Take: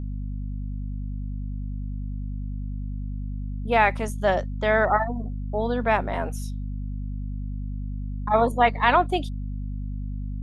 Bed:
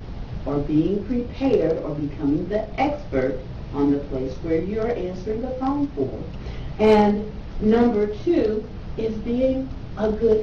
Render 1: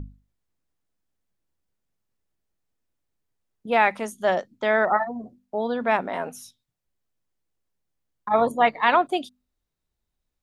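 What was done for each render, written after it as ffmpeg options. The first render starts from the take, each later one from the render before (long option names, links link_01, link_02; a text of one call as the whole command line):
ffmpeg -i in.wav -af "bandreject=frequency=50:width_type=h:width=6,bandreject=frequency=100:width_type=h:width=6,bandreject=frequency=150:width_type=h:width=6,bandreject=frequency=200:width_type=h:width=6,bandreject=frequency=250:width_type=h:width=6" out.wav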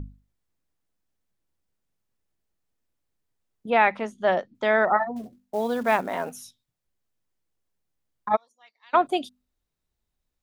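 ffmpeg -i in.wav -filter_complex "[0:a]asettb=1/sr,asplit=3[link_01][link_02][link_03];[link_01]atrim=end=3.704[link_04];[link_02]atrim=start=3.7:end=4.55,asetpts=PTS-STARTPTS,afade=type=in:duration=0.004:curve=qsin,afade=type=out:start_time=0.846:duration=0.004:curve=qsin,lowpass=3900[link_05];[link_03]atrim=start=4.546[link_06];[link_04][link_05]acrossfade=duration=0.004:curve1=hsin:curve2=qsin[link_07];[link_07][link_06]acrossfade=duration=0.004:curve1=qsin:curve2=hsin,asettb=1/sr,asplit=3[link_08][link_09][link_10];[link_08]atrim=end=5.164[link_11];[link_09]atrim=start=5.16:end=6.41,asetpts=PTS-STARTPTS,afade=type=in:duration=0.004:curve=qsin,afade=type=out:start_time=1.246:duration=0.004:curve=qsin,acrusher=bits=6:mode=log:mix=0:aa=0.000001[link_12];[link_10]atrim=start=6.406[link_13];[link_11][link_12]acrossfade=duration=0.004:curve1=hsin:curve2=qsin[link_14];[link_14][link_13]acrossfade=duration=0.004:curve1=qsin:curve2=hsin,asplit=3[link_15][link_16][link_17];[link_15]afade=type=out:start_time=8.35:duration=0.02[link_18];[link_16]bandpass=frequency=5600:width_type=q:width=14,afade=type=in:start_time=8.35:duration=0.02,afade=type=out:start_time=8.93:duration=0.02[link_19];[link_17]afade=type=in:start_time=8.93:duration=0.02[link_20];[link_18][link_19][link_20]amix=inputs=3:normalize=0" out.wav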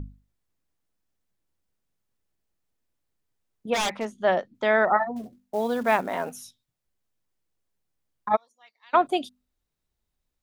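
ffmpeg -i in.wav -filter_complex "[0:a]asplit=3[link_01][link_02][link_03];[link_01]afade=type=out:start_time=3.73:duration=0.02[link_04];[link_02]aeval=exprs='0.1*(abs(mod(val(0)/0.1+3,4)-2)-1)':channel_layout=same,afade=type=in:start_time=3.73:duration=0.02,afade=type=out:start_time=4.18:duration=0.02[link_05];[link_03]afade=type=in:start_time=4.18:duration=0.02[link_06];[link_04][link_05][link_06]amix=inputs=3:normalize=0" out.wav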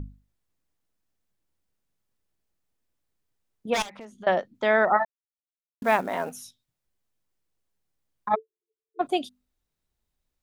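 ffmpeg -i in.wav -filter_complex "[0:a]asettb=1/sr,asplit=3[link_01][link_02][link_03];[link_01]atrim=end=3.824[link_04];[link_02]atrim=start=3.82:end=4.27,asetpts=PTS-STARTPTS,afade=type=in:duration=0.004:curve=qsin,afade=type=out:start_time=0.446:duration=0.004:curve=qsin,acompressor=threshold=-40dB:ratio=5:attack=3.2:release=140:knee=1:detection=peak[link_05];[link_03]atrim=start=4.266[link_06];[link_04][link_05]acrossfade=duration=0.004:curve1=hsin:curve2=qsin[link_07];[link_07][link_06]acrossfade=duration=0.004:curve1=qsin:curve2=hsin,asplit=3[link_08][link_09][link_10];[link_08]afade=type=out:start_time=8.34:duration=0.02[link_11];[link_09]asuperpass=centerf=390:order=20:qfactor=3.8,afade=type=in:start_time=8.34:duration=0.02,afade=type=out:start_time=8.99:duration=0.02[link_12];[link_10]afade=type=in:start_time=8.99:duration=0.02[link_13];[link_11][link_12][link_13]amix=inputs=3:normalize=0,asplit=3[link_14][link_15][link_16];[link_14]atrim=end=5.05,asetpts=PTS-STARTPTS,afade=type=out:start_time=5.046:duration=0.004:curve=hsin[link_17];[link_15]atrim=start=5.05:end=5.82,asetpts=PTS-STARTPTS,volume=0[link_18];[link_16]atrim=start=5.82,asetpts=PTS-STARTPTS,afade=type=in:duration=0.004:curve=hsin[link_19];[link_17][link_18][link_19]concat=n=3:v=0:a=1" out.wav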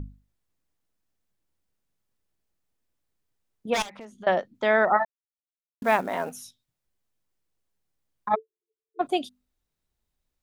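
ffmpeg -i in.wav -af anull out.wav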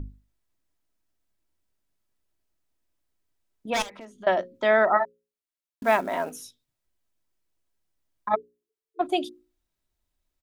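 ffmpeg -i in.wav -af "bandreject=frequency=60:width_type=h:width=6,bandreject=frequency=120:width_type=h:width=6,bandreject=frequency=180:width_type=h:width=6,bandreject=frequency=240:width_type=h:width=6,bandreject=frequency=300:width_type=h:width=6,bandreject=frequency=360:width_type=h:width=6,bandreject=frequency=420:width_type=h:width=6,bandreject=frequency=480:width_type=h:width=6,bandreject=frequency=540:width_type=h:width=6,aecho=1:1:3.1:0.31" out.wav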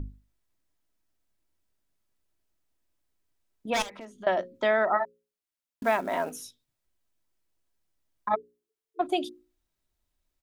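ffmpeg -i in.wav -af "acompressor=threshold=-23dB:ratio=2" out.wav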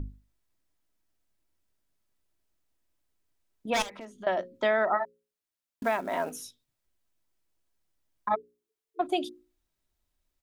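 ffmpeg -i in.wav -af "alimiter=limit=-15dB:level=0:latency=1:release=424" out.wav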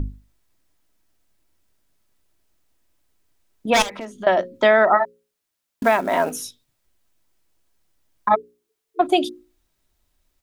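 ffmpeg -i in.wav -af "volume=10.5dB" out.wav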